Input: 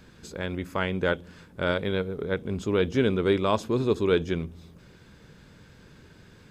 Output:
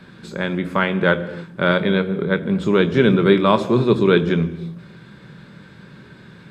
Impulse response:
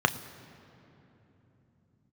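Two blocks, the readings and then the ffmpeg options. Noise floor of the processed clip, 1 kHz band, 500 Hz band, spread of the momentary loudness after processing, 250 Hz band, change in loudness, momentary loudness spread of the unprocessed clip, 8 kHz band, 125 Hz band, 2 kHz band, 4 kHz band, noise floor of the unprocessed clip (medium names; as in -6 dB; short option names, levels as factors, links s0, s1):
-44 dBFS, +9.5 dB, +7.5 dB, 11 LU, +10.5 dB, +9.0 dB, 10 LU, no reading, +9.5 dB, +10.0 dB, +8.0 dB, -53 dBFS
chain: -filter_complex "[1:a]atrim=start_sample=2205,afade=t=out:st=0.44:d=0.01,atrim=end_sample=19845,asetrate=57330,aresample=44100[s0];[0:a][s0]afir=irnorm=-1:irlink=0,volume=0.75"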